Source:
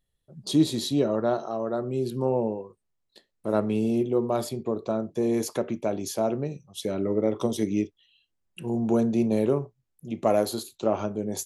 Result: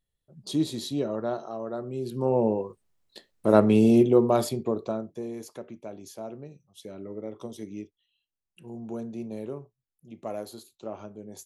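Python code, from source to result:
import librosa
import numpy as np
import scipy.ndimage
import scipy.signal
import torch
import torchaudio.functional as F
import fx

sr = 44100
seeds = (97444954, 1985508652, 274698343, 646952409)

y = fx.gain(x, sr, db=fx.line((2.01, -5.0), (2.61, 6.5), (4.01, 6.5), (4.8, 0.0), (5.35, -12.5)))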